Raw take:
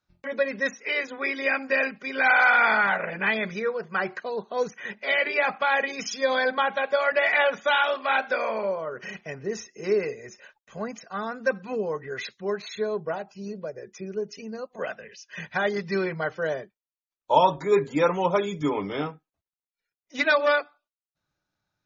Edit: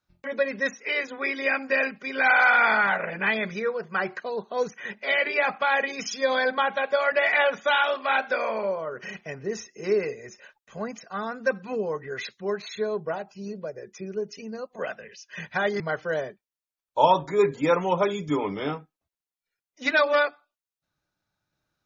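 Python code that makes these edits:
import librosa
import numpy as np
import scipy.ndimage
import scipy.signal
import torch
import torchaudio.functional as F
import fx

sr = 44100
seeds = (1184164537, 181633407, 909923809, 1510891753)

y = fx.edit(x, sr, fx.cut(start_s=15.8, length_s=0.33), tone=tone)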